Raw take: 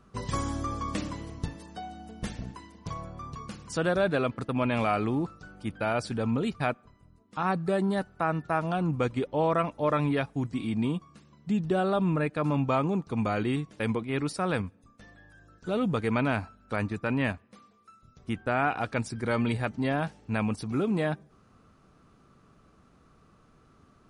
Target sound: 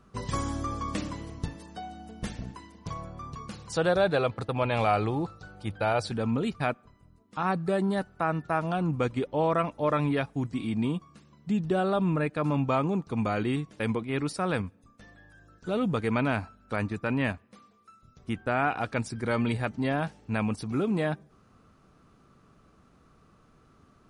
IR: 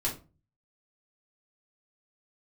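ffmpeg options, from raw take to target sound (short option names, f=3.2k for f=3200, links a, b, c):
-filter_complex "[0:a]asettb=1/sr,asplit=3[a][b][c];[a]atrim=end=3.534[d];[b]atrim=start=3.53:end=6.12,asetpts=PTS-STARTPTS,afade=t=in:d=0.004:c=qsin,afade=t=out:st=2.586:d=0.004:c=qsin,equalizer=f=100:t=o:w=0.33:g=6,equalizer=f=250:t=o:w=0.33:g=-8,equalizer=f=500:t=o:w=0.33:g=4,equalizer=f=800:t=o:w=0.33:g=6,equalizer=f=4k:t=o:w=0.33:g=7[e];[c]atrim=start=6.116[f];[d][e]acrossfade=d=0.004:c1=hsin:c2=qsin[g];[g][f]acrossfade=d=0.004:c1=qsin:c2=hsin"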